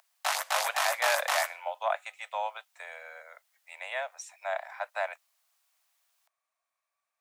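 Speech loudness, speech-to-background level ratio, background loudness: −34.0 LKFS, −4.0 dB, −30.0 LKFS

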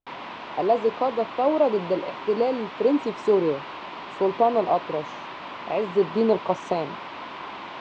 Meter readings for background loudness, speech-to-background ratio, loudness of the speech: −36.5 LKFS, 12.0 dB, −24.5 LKFS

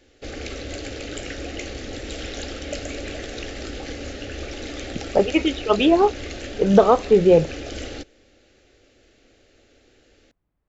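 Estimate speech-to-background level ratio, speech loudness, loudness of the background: 15.0 dB, −18.0 LKFS, −33.0 LKFS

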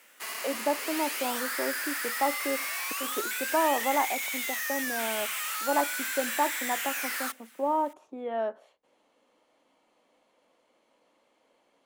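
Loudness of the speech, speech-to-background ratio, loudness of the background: −32.5 LKFS, −1.5 dB, −31.0 LKFS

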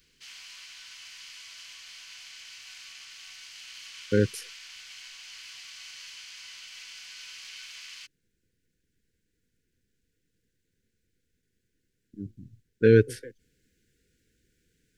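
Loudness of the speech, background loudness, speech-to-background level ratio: −23.5 LKFS, −43.0 LKFS, 19.5 dB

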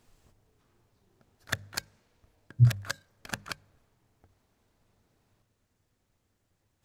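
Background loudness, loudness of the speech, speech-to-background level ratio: −38.5 LKFS, −25.0 LKFS, 13.5 dB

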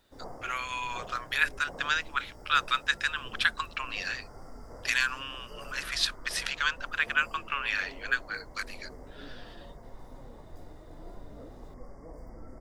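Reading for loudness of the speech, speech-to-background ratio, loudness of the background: −30.5 LKFS, 18.5 dB, −49.0 LKFS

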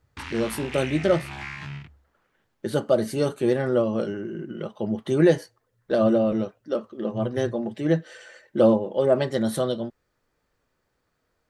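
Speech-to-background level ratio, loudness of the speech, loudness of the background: 11.5 dB, −24.5 LKFS, −36.0 LKFS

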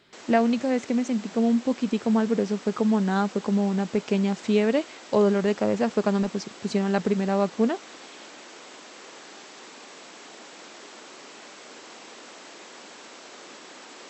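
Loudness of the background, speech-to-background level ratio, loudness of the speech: −43.5 LKFS, 19.0 dB, −24.5 LKFS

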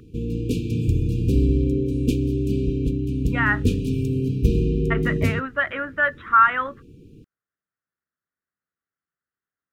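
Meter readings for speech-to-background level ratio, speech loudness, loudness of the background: 0.5 dB, −22.5 LKFS, −23.0 LKFS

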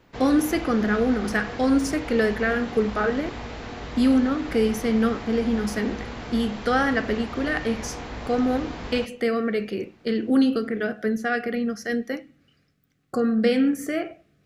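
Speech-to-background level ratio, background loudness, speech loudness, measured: 11.5 dB, −35.5 LKFS, −24.0 LKFS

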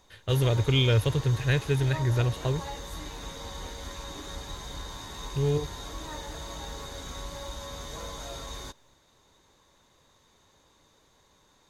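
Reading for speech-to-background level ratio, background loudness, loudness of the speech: 13.0 dB, −39.5 LKFS, −26.5 LKFS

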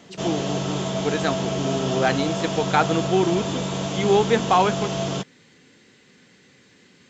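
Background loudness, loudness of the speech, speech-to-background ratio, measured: −26.5 LKFS, −24.0 LKFS, 2.5 dB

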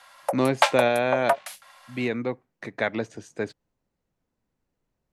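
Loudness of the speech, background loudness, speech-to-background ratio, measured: −27.0 LKFS, −26.5 LKFS, −0.5 dB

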